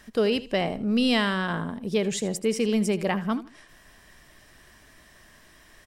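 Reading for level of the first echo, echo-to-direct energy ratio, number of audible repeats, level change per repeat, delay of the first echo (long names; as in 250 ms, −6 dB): −16.0 dB, −16.0 dB, 2, −12.0 dB, 79 ms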